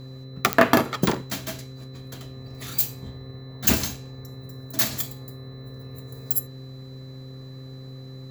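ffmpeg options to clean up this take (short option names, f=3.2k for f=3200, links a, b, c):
-af "adeclick=t=4,bandreject=f=131:t=h:w=4,bandreject=f=262:t=h:w=4,bandreject=f=393:t=h:w=4,bandreject=f=524:t=h:w=4,bandreject=f=4k:w=30"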